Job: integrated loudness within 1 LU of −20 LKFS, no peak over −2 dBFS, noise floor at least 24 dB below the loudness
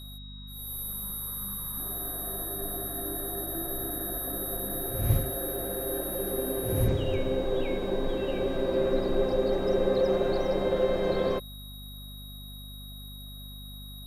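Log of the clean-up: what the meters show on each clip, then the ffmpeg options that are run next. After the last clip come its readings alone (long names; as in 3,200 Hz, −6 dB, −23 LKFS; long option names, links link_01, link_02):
mains hum 50 Hz; hum harmonics up to 250 Hz; level of the hum −41 dBFS; interfering tone 3,800 Hz; level of the tone −46 dBFS; integrated loudness −29.5 LKFS; sample peak −11.0 dBFS; target loudness −20.0 LKFS
→ -af "bandreject=frequency=50:width_type=h:width=6,bandreject=frequency=100:width_type=h:width=6,bandreject=frequency=150:width_type=h:width=6,bandreject=frequency=200:width_type=h:width=6,bandreject=frequency=250:width_type=h:width=6"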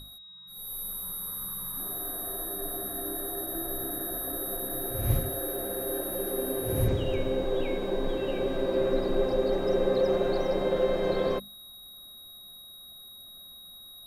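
mains hum none found; interfering tone 3,800 Hz; level of the tone −46 dBFS
→ -af "bandreject=frequency=3800:width=30"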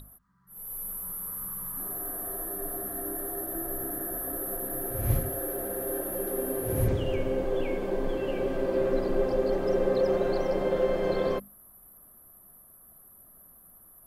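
interfering tone none found; integrated loudness −30.0 LKFS; sample peak −12.5 dBFS; target loudness −20.0 LKFS
→ -af "volume=10dB"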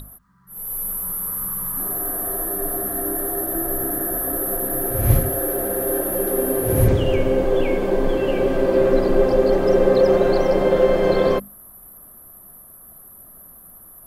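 integrated loudness −20.0 LKFS; sample peak −2.5 dBFS; background noise floor −45 dBFS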